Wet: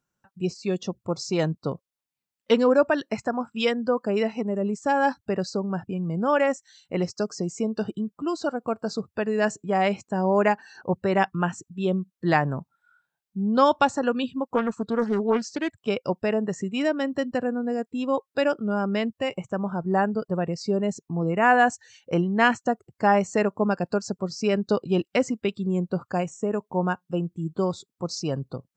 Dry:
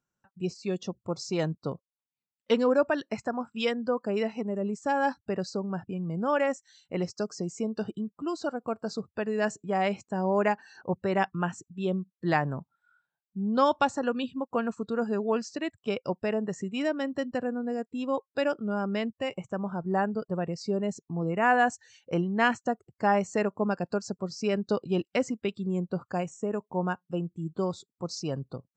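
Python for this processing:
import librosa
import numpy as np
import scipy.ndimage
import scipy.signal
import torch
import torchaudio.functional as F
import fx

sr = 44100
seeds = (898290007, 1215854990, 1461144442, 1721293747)

y = fx.doppler_dist(x, sr, depth_ms=0.23, at=(14.5, 15.79))
y = y * librosa.db_to_amplitude(4.5)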